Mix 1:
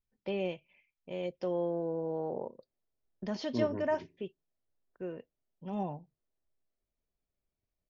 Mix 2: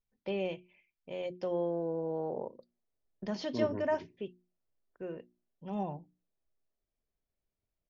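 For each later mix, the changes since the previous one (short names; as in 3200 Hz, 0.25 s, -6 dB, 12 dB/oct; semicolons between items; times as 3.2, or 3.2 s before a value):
master: add notches 60/120/180/240/300/360 Hz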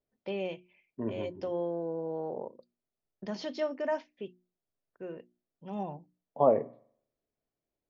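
first voice: add low shelf 76 Hz -10.5 dB; second voice: entry -2.55 s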